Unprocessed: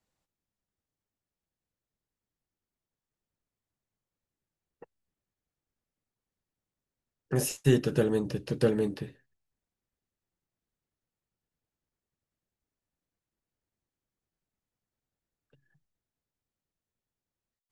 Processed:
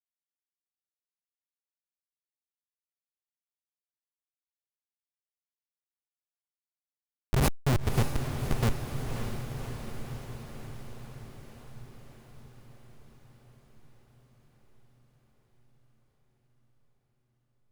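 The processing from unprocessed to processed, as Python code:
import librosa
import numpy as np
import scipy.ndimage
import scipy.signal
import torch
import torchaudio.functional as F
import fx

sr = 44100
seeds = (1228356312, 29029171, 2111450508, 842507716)

y = fx.bass_treble(x, sr, bass_db=10, treble_db=11)
y = fx.schmitt(y, sr, flips_db=-15.5)
y = fx.power_curve(y, sr, exponent=0.35)
y = fx.echo_diffused(y, sr, ms=578, feedback_pct=68, wet_db=-6.5)
y = y * librosa.db_to_amplitude(5.0)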